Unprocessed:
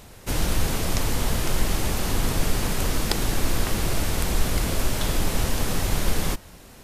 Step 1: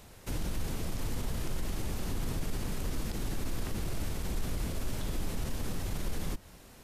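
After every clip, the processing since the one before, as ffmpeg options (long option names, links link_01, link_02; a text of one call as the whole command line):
ffmpeg -i in.wav -filter_complex "[0:a]alimiter=limit=-16.5dB:level=0:latency=1:release=31,acrossover=split=400[link_01][link_02];[link_02]acompressor=threshold=-36dB:ratio=4[link_03];[link_01][link_03]amix=inputs=2:normalize=0,volume=-7dB" out.wav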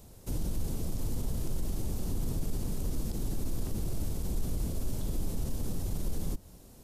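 ffmpeg -i in.wav -af "equalizer=frequency=1900:width_type=o:width=2.3:gain=-14,volume=2dB" out.wav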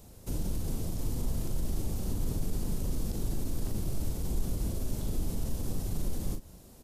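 ffmpeg -i in.wav -filter_complex "[0:a]asplit=2[link_01][link_02];[link_02]adelay=39,volume=-7dB[link_03];[link_01][link_03]amix=inputs=2:normalize=0" out.wav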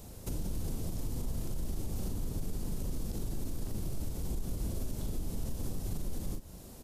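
ffmpeg -i in.wav -af "alimiter=level_in=6.5dB:limit=-24dB:level=0:latency=1:release=322,volume=-6.5dB,volume=4dB" out.wav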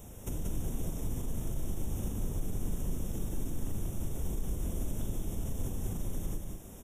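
ffmpeg -i in.wav -af "asuperstop=centerf=4500:order=12:qfactor=2.7,aecho=1:1:184:0.596" out.wav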